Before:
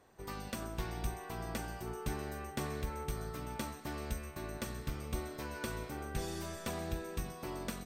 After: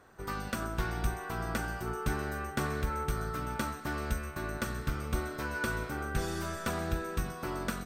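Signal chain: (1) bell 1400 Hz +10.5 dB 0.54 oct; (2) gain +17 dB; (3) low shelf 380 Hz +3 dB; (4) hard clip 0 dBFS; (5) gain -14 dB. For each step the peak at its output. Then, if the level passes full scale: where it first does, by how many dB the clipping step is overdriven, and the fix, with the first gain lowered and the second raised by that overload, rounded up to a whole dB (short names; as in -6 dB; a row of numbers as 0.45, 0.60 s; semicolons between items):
-22.0, -5.0, -3.0, -3.0, -17.0 dBFS; no overload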